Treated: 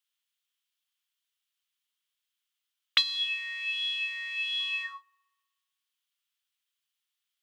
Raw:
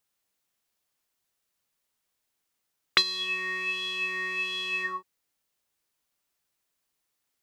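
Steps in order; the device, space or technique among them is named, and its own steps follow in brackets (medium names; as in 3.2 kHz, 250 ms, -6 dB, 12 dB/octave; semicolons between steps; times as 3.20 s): headphones lying on a table (high-pass 1.1 kHz 24 dB/octave; peaking EQ 3.2 kHz +11.5 dB 0.59 oct); 3.15–4.60 s: band-stop 1.1 kHz, Q 12; feedback echo behind a low-pass 62 ms, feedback 73%, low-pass 730 Hz, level -20 dB; trim -7.5 dB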